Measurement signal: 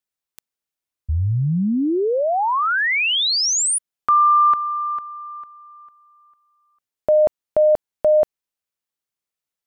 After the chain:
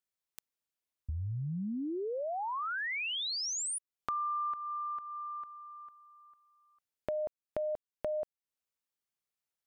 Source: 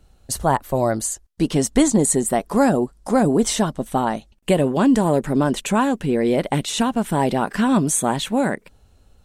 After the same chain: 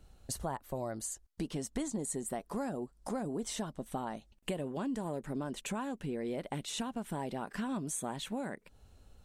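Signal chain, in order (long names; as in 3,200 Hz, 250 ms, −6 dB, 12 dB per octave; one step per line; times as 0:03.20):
downward compressor 3 to 1, threshold −34 dBFS
level −5 dB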